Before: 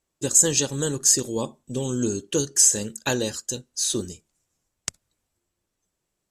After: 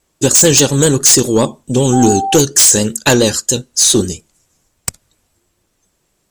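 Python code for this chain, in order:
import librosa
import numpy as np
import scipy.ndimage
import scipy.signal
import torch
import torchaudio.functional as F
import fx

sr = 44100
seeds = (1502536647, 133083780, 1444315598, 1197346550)

y = fx.vibrato(x, sr, rate_hz=7.2, depth_cents=52.0)
y = fx.fold_sine(y, sr, drive_db=11, ceiling_db=-4.5)
y = fx.dmg_tone(y, sr, hz=780.0, level_db=-16.0, at=(1.92, 2.35), fade=0.02)
y = y * librosa.db_to_amplitude(1.0)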